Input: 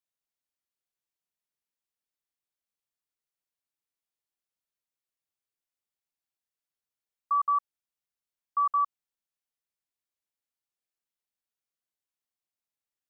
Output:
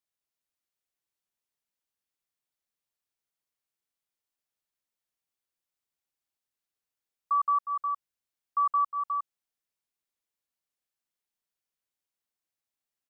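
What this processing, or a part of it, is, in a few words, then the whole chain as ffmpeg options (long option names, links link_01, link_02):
ducked delay: -filter_complex "[0:a]asplit=3[link_01][link_02][link_03];[link_02]adelay=360,volume=-5dB[link_04];[link_03]apad=whole_len=593384[link_05];[link_04][link_05]sidechaincompress=threshold=-43dB:ratio=8:attack=16:release=107[link_06];[link_01][link_06]amix=inputs=2:normalize=0"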